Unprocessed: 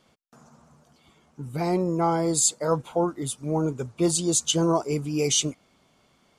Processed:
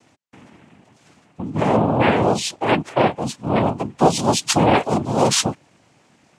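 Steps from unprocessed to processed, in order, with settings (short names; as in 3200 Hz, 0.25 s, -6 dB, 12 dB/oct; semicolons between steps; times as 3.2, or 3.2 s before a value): air absorption 73 m; noise vocoder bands 4; 1.5–2.67 high shelf 4100 Hz -7.5 dB; gain +7.5 dB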